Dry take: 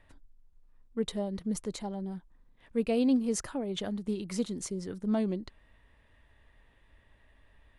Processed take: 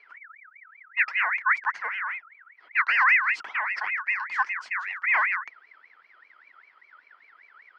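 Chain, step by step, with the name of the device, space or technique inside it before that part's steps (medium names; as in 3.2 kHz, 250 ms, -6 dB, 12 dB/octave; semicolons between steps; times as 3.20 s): 0.99–1.70 s: tilt shelf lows +4 dB, about 900 Hz; voice changer toy (ring modulator with a swept carrier 1.8 kHz, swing 30%, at 5.1 Hz; cabinet simulation 470–4600 Hz, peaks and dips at 530 Hz -3 dB, 970 Hz +8 dB, 1.4 kHz +5 dB, 2 kHz +7 dB, 3.7 kHz -10 dB); trim +3.5 dB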